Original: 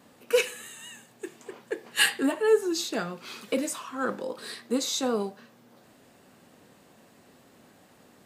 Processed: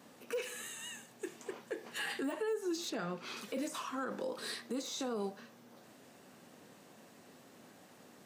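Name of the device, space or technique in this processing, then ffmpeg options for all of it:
broadcast voice chain: -filter_complex "[0:a]highpass=120,deesser=0.85,acompressor=threshold=-29dB:ratio=4,equalizer=frequency=5900:width_type=o:width=0.25:gain=4,alimiter=level_in=4dB:limit=-24dB:level=0:latency=1:release=23,volume=-4dB,asettb=1/sr,asplit=3[link_01][link_02][link_03];[link_01]atrim=end=2.904[link_04];[link_02]atrim=start=2.9:end=3.37,asetpts=PTS-STARTPTS,afade=type=in:duration=0.004:curve=qsin,afade=type=out:start_time=0.466:duration=0.004:curve=qsin,aemphasis=mode=reproduction:type=cd[link_05];[link_03]atrim=start=3.366[link_06];[link_04][link_05]acrossfade=duration=0.004:curve1=hsin:curve2=qsin[link_07];[link_07][link_06]acrossfade=duration=0.004:curve1=qsin:curve2=hsin,volume=-1.5dB"

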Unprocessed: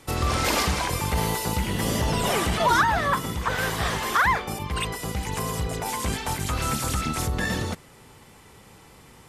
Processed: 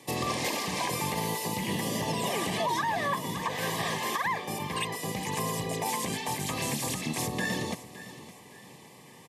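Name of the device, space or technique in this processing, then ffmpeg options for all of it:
PA system with an anti-feedback notch: -af "highpass=frequency=130:width=0.5412,highpass=frequency=130:width=1.3066,asuperstop=centerf=1400:order=8:qfactor=3.6,aecho=1:1:563|1126|1689:0.141|0.0537|0.0204,alimiter=limit=-19dB:level=0:latency=1:release=313,volume=-1dB"

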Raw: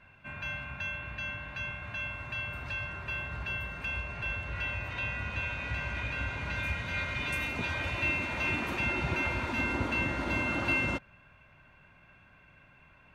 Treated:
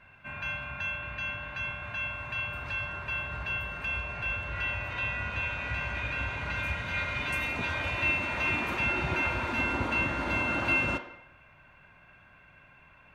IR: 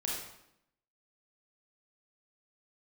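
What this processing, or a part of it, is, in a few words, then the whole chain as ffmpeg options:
filtered reverb send: -filter_complex "[0:a]asplit=2[link_01][link_02];[link_02]highpass=450,lowpass=3400[link_03];[1:a]atrim=start_sample=2205[link_04];[link_03][link_04]afir=irnorm=-1:irlink=0,volume=-7dB[link_05];[link_01][link_05]amix=inputs=2:normalize=0"

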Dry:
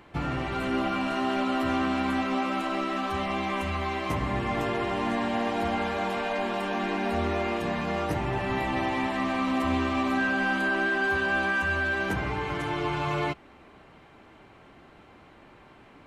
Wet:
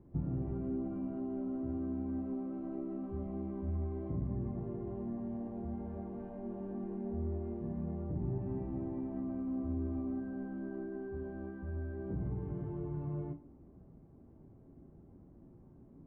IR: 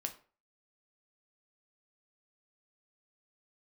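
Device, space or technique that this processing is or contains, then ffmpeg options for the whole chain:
television next door: -filter_complex "[0:a]acompressor=threshold=-30dB:ratio=6,lowpass=250[link_01];[1:a]atrim=start_sample=2205[link_02];[link_01][link_02]afir=irnorm=-1:irlink=0,volume=2dB"

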